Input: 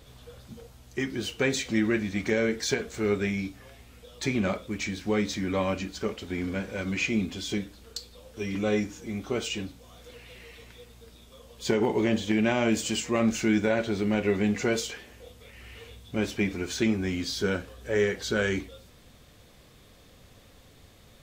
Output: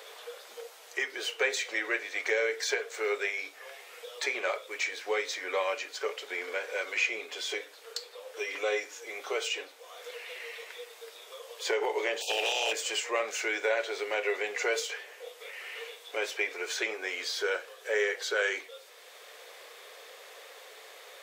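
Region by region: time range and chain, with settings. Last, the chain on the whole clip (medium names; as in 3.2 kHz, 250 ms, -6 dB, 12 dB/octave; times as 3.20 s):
12.20–12.71 s: spectral peaks clipped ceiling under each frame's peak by 27 dB + brick-wall FIR band-stop 940–2400 Hz + hard clipper -22 dBFS
whole clip: elliptic high-pass 440 Hz, stop band 60 dB; peaking EQ 2 kHz +4 dB 0.78 oct; three bands compressed up and down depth 40%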